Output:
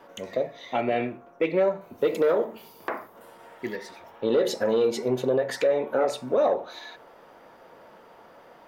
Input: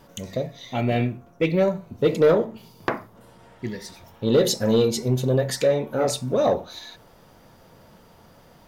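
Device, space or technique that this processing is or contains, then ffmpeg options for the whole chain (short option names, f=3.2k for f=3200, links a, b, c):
DJ mixer with the lows and highs turned down: -filter_complex "[0:a]asettb=1/sr,asplit=3[a][b][c];[a]atrim=end=1.814[d];[b]atrim=start=1.81:end=3.76,asetpts=PTS-STARTPTS,afade=t=in:d=0.004:c=qsin,afade=t=out:st=1.946:d=0.004:c=qsin,aemphasis=mode=production:type=50fm[e];[c]atrim=start=3.756[f];[d][e]acrossfade=d=0.004:c1=hsin:c2=qsin[g];[g][f]acrossfade=d=0.004:c1=qsin:c2=hsin,acrossover=split=300 2700:gain=0.0891 1 0.2[h][i][j];[h][i][j]amix=inputs=3:normalize=0,alimiter=limit=-18.5dB:level=0:latency=1:release=177,volume=4.5dB"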